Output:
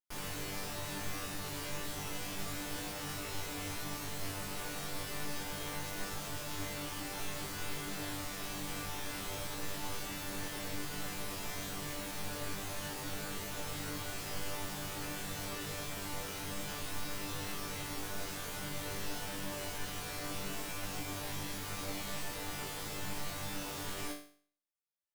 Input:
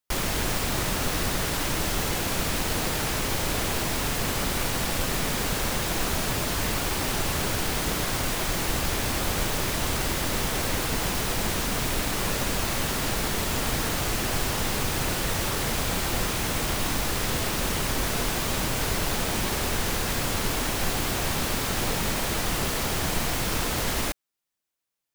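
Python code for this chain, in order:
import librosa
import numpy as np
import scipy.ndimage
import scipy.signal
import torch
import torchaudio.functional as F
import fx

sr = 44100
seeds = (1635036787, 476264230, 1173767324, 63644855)

y = fx.vibrato(x, sr, rate_hz=0.35, depth_cents=6.2)
y = fx.resonator_bank(y, sr, root=43, chord='fifth', decay_s=0.47)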